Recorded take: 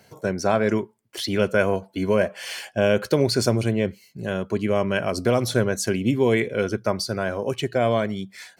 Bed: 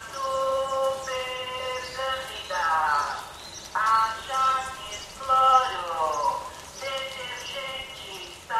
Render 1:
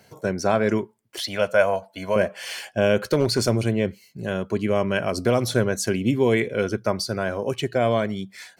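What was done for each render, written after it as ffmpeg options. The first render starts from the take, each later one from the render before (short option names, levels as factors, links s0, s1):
-filter_complex "[0:a]asettb=1/sr,asplit=3[s0][s1][s2];[s0]atrim=end=1.194[s3];[s1]atrim=start=1.19:end=2.16,asetpts=PTS-STARTPTS,afade=t=in:d=0.004:c=qsin,afade=t=out:st=0.966:d=0.004:c=qsin,lowshelf=f=480:t=q:w=3:g=-7.5[s4];[s2]atrim=start=2.156[s5];[s3][s4]acrossfade=d=0.004:c1=hsin:c2=qsin[s6];[s6][s5]acrossfade=d=0.004:c1=qsin:c2=hsin,asplit=3[s7][s8][s9];[s7]afade=t=out:st=3.04:d=0.02[s10];[s8]asoftclip=type=hard:threshold=0.251,afade=t=in:st=3.04:d=0.02,afade=t=out:st=3.48:d=0.02[s11];[s9]afade=t=in:st=3.48:d=0.02[s12];[s10][s11][s12]amix=inputs=3:normalize=0"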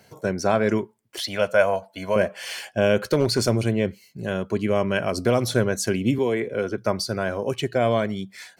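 -filter_complex "[0:a]asettb=1/sr,asplit=3[s0][s1][s2];[s0]atrim=end=6.184[s3];[s1]atrim=start=6.18:end=6.78,asetpts=PTS-STARTPTS,afade=t=in:d=0.004:c=qsin,afade=t=out:st=0.596:d=0.004:c=qsin,acrossover=split=250|1800|4700[s4][s5][s6][s7];[s4]acompressor=threshold=0.0158:ratio=3[s8];[s5]acompressor=threshold=0.1:ratio=3[s9];[s6]acompressor=threshold=0.00631:ratio=3[s10];[s7]acompressor=threshold=0.00141:ratio=3[s11];[s8][s9][s10][s11]amix=inputs=4:normalize=0[s12];[s2]atrim=start=6.776[s13];[s3][s12]acrossfade=d=0.004:c1=hsin:c2=qsin[s14];[s14][s13]acrossfade=d=0.004:c1=qsin:c2=hsin"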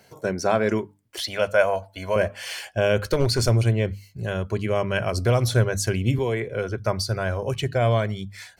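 -af "bandreject=f=50:t=h:w=6,bandreject=f=100:t=h:w=6,bandreject=f=150:t=h:w=6,bandreject=f=200:t=h:w=6,bandreject=f=250:t=h:w=6,bandreject=f=300:t=h:w=6,asubboost=boost=11.5:cutoff=71"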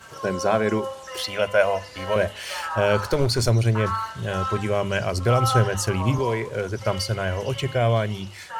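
-filter_complex "[1:a]volume=0.501[s0];[0:a][s0]amix=inputs=2:normalize=0"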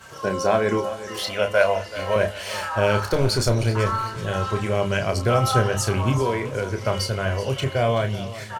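-filter_complex "[0:a]asplit=2[s0][s1];[s1]adelay=30,volume=0.447[s2];[s0][s2]amix=inputs=2:normalize=0,aecho=1:1:380|760|1140|1520:0.178|0.0818|0.0376|0.0173"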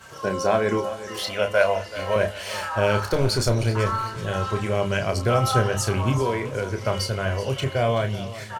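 -af "volume=0.891"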